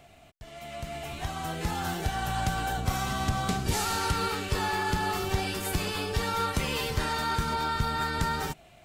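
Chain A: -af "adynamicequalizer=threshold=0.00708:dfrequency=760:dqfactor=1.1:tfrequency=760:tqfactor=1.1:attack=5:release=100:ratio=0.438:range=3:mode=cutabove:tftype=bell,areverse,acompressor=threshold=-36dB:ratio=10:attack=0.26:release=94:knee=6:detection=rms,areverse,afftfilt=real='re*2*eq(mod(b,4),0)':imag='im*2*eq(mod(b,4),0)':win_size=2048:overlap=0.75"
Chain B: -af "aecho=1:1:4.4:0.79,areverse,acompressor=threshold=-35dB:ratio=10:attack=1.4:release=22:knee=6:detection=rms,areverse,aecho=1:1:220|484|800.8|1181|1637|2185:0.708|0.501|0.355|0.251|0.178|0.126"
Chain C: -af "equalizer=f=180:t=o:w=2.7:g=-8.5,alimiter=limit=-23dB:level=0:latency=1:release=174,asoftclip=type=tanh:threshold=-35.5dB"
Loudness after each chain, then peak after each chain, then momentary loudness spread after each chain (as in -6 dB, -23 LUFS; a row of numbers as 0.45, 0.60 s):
-43.5, -35.5, -38.5 LUFS; -31.0, -23.5, -35.5 dBFS; 3, 3, 4 LU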